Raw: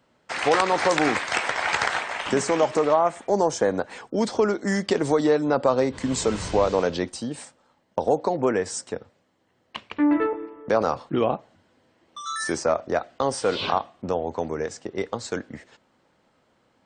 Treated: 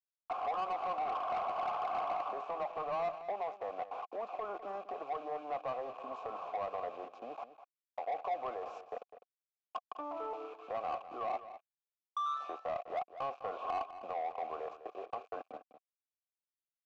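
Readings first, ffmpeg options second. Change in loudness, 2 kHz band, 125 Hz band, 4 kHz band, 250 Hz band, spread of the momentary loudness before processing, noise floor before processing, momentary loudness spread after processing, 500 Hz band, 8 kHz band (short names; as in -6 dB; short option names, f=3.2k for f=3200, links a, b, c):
-15.5 dB, -22.5 dB, -29.0 dB, -23.0 dB, -29.0 dB, 12 LU, -66 dBFS, 11 LU, -17.0 dB, under -35 dB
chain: -filter_complex "[0:a]anlmdn=0.398,firequalizer=gain_entry='entry(130,0);entry(1100,2);entry(1900,-20);entry(3000,-21)':delay=0.05:min_phase=1,areverse,acompressor=threshold=-35dB:ratio=4,areverse,alimiter=level_in=5dB:limit=-24dB:level=0:latency=1:release=238,volume=-5dB,acrossover=split=400|1000|3400[a][b][c][d];[a]acompressor=threshold=-48dB:ratio=4[e];[b]acompressor=threshold=-45dB:ratio=4[f];[c]acompressor=threshold=-45dB:ratio=4[g];[d]acompressor=threshold=-41dB:ratio=4[h];[e][f][g][h]amix=inputs=4:normalize=0,aresample=16000,aeval=exprs='val(0)*gte(abs(val(0)),0.00211)':c=same,aresample=44100,asplit=3[i][j][k];[i]bandpass=f=730:t=q:w=8,volume=0dB[l];[j]bandpass=f=1.09k:t=q:w=8,volume=-6dB[m];[k]bandpass=f=2.44k:t=q:w=8,volume=-9dB[n];[l][m][n]amix=inputs=3:normalize=0,asplit=2[o][p];[p]highpass=f=720:p=1,volume=16dB,asoftclip=type=tanh:threshold=-38.5dB[q];[o][q]amix=inputs=2:normalize=0,lowpass=f=3.1k:p=1,volume=-6dB,aecho=1:1:203:0.224,volume=10.5dB"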